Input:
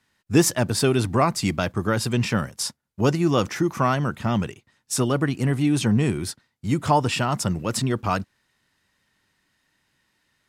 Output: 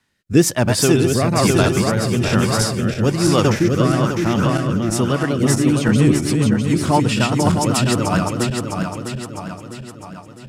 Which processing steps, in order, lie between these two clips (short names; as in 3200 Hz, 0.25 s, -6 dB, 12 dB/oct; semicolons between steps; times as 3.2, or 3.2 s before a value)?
regenerating reverse delay 0.327 s, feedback 70%, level -2 dB; rotary speaker horn 1.1 Hz, later 7.5 Hz, at 5.05; gain +5 dB